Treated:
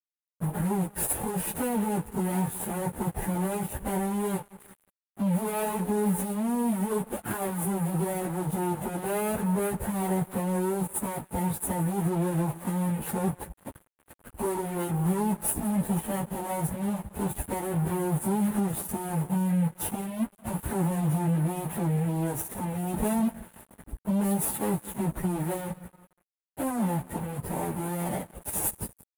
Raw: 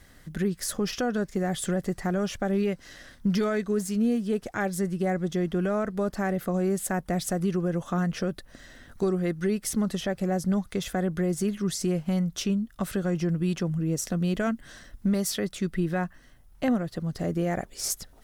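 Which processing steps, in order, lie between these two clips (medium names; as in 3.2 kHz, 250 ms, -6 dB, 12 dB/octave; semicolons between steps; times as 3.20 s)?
median filter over 41 samples; power-law waveshaper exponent 1.4; expander -59 dBFS; in parallel at +0.5 dB: compressor with a negative ratio -32 dBFS, ratio -0.5; on the sum: waveshaping leveller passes 5; high-pass 46 Hz 12 dB/octave; peaking EQ 880 Hz +11.5 dB 0.27 oct; peak limiter -19 dBFS, peak gain reduction 11.5 dB; on a send: feedback delay 110 ms, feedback 57%, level -18 dB; on the sum: plain phase-vocoder stretch 1.6×; crossover distortion -46 dBFS; resonant high shelf 7.5 kHz +13.5 dB, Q 3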